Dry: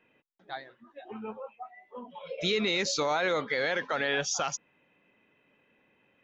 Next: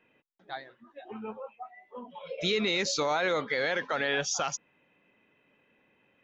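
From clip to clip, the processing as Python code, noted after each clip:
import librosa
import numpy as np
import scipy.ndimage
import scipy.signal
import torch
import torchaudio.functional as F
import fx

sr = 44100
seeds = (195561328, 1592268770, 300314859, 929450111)

y = x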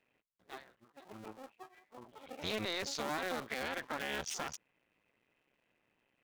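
y = fx.cycle_switch(x, sr, every=2, mode='muted')
y = y * librosa.db_to_amplitude(-7.0)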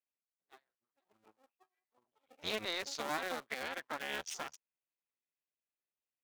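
y = fx.low_shelf(x, sr, hz=290.0, db=-8.0)
y = fx.upward_expand(y, sr, threshold_db=-56.0, expansion=2.5)
y = y * librosa.db_to_amplitude(3.0)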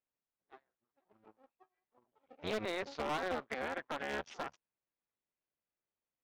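y = fx.spacing_loss(x, sr, db_at_10k=38)
y = 10.0 ** (-34.5 / 20.0) * (np.abs((y / 10.0 ** (-34.5 / 20.0) + 3.0) % 4.0 - 2.0) - 1.0)
y = y * librosa.db_to_amplitude(7.0)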